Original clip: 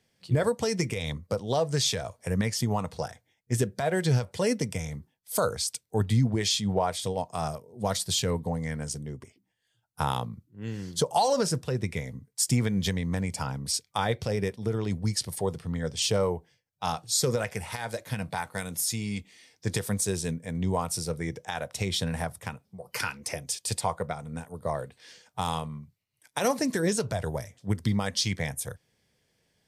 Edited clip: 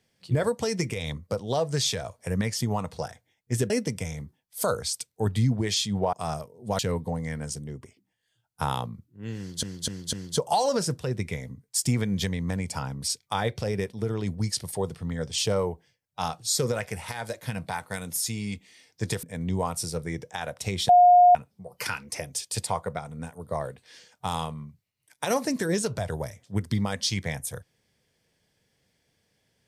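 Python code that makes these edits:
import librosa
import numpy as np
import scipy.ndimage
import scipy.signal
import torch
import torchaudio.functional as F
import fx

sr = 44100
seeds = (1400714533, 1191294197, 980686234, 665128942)

y = fx.edit(x, sr, fx.cut(start_s=3.7, length_s=0.74),
    fx.cut(start_s=6.87, length_s=0.4),
    fx.cut(start_s=7.93, length_s=0.25),
    fx.repeat(start_s=10.77, length_s=0.25, count=4),
    fx.cut(start_s=19.87, length_s=0.5),
    fx.bleep(start_s=22.03, length_s=0.46, hz=714.0, db=-11.5), tone=tone)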